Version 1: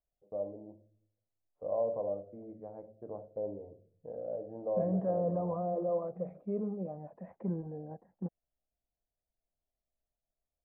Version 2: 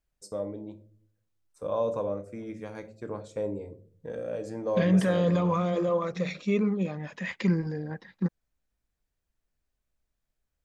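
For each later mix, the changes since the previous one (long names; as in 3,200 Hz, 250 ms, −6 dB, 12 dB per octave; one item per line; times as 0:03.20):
master: remove transistor ladder low-pass 770 Hz, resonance 65%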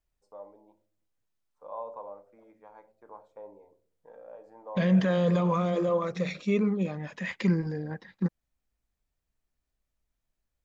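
first voice: add resonant band-pass 890 Hz, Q 4.2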